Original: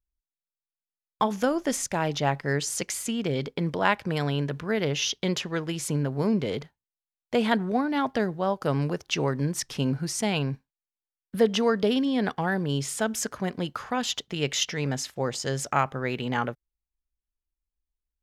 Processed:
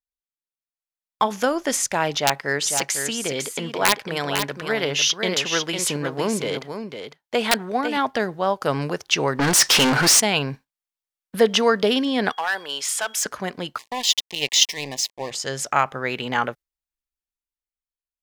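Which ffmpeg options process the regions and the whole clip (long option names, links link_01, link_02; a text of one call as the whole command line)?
ffmpeg -i in.wav -filter_complex "[0:a]asettb=1/sr,asplit=3[link_01][link_02][link_03];[link_01]atrim=end=2.154[link_04];[link_02]atrim=start=2.15:end=7.97,asetpts=PTS-STARTPTS,afade=type=in:duration=0.004:curve=qsin,afade=type=out:start_time=5.816:duration=0.004:curve=qsin,lowshelf=frequency=130:gain=-9.5,aeval=exprs='(mod(3.76*val(0)+1,2)-1)/3.76':channel_layout=same,aecho=1:1:502:0.447,atrim=end_sample=256662[link_05];[link_03]atrim=start=7.966[link_06];[link_04][link_05]acrossfade=duration=0.004:curve1=hsin:curve2=qsin[link_07];[link_07][link_06]acrossfade=duration=0.004:curve1=qsin:curve2=hsin,asettb=1/sr,asplit=3[link_08][link_09][link_10];[link_08]atrim=end=9.394[link_11];[link_09]atrim=start=9.39:end=10.2,asetpts=PTS-STARTPTS,afade=type=in:duration=0.004:curve=qsin,afade=type=out:start_time=0.806:duration=0.004:curve=qsin,asplit=2[link_12][link_13];[link_13]highpass=frequency=720:poles=1,volume=33dB,asoftclip=type=tanh:threshold=-14.5dB[link_14];[link_12][link_14]amix=inputs=2:normalize=0,lowpass=frequency=3400:poles=1,volume=-6dB,adynamicequalizer=threshold=0.0112:dfrequency=4700:dqfactor=0.7:tfrequency=4700:tqfactor=0.7:attack=5:release=100:ratio=0.375:range=2.5:mode=boostabove:tftype=highshelf[link_15];[link_10]atrim=start=10.196[link_16];[link_11][link_15]acrossfade=duration=0.004:curve1=hsin:curve2=qsin[link_17];[link_17][link_16]acrossfade=duration=0.004:curve1=qsin:curve2=hsin,asettb=1/sr,asplit=3[link_18][link_19][link_20];[link_18]atrim=end=12.324[link_21];[link_19]atrim=start=12.32:end=13.26,asetpts=PTS-STARTPTS,afade=type=in:duration=0.004:curve=qsin,afade=type=out:start_time=0.936:duration=0.004:curve=qsin,highpass=740,asoftclip=type=hard:threshold=-26dB,aeval=exprs='val(0)+0.00178*sin(2*PI*3300*n/s)':channel_layout=same[link_22];[link_20]atrim=start=13.256[link_23];[link_21][link_22]acrossfade=duration=0.004:curve1=hsin:curve2=qsin[link_24];[link_24][link_23]acrossfade=duration=0.004:curve1=qsin:curve2=hsin,asettb=1/sr,asplit=3[link_25][link_26][link_27];[link_25]atrim=end=13.784[link_28];[link_26]atrim=start=13.78:end=15.31,asetpts=PTS-STARTPTS,afade=type=in:duration=0.004:curve=qsin,afade=type=out:start_time=1.526:duration=0.004:curve=qsin,equalizer=frequency=4600:width=0.74:gain=10,aeval=exprs='sgn(val(0))*max(abs(val(0))-0.0211,0)':channel_layout=same,asuperstop=centerf=1400:order=8:qfactor=2.1[link_29];[link_27]atrim=start=15.306[link_30];[link_28][link_29]acrossfade=duration=0.004:curve1=hsin:curve2=qsin[link_31];[link_31][link_30]acrossfade=duration=0.004:curve1=qsin:curve2=hsin,agate=range=-7dB:threshold=-43dB:ratio=16:detection=peak,lowshelf=frequency=360:gain=-11.5,dynaudnorm=framelen=120:gausssize=17:maxgain=9.5dB" out.wav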